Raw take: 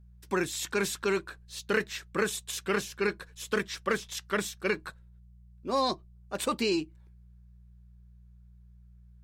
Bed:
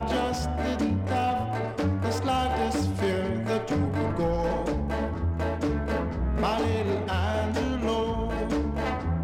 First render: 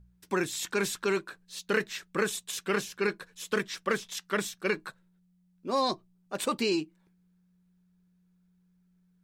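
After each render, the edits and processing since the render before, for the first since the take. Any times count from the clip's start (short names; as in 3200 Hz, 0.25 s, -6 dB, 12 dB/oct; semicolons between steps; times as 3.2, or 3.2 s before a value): de-hum 60 Hz, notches 2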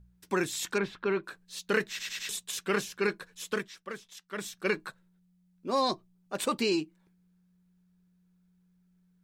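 0.78–1.24 air absorption 340 m; 1.89 stutter in place 0.10 s, 4 plays; 3.44–4.61 dip -11.5 dB, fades 0.30 s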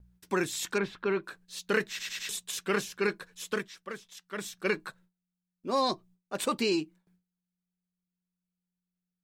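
gate with hold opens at -57 dBFS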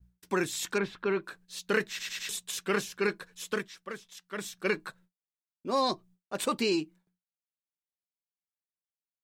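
expander -56 dBFS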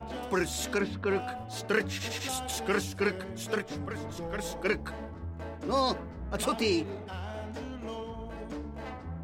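add bed -12 dB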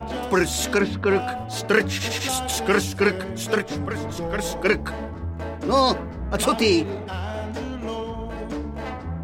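gain +9 dB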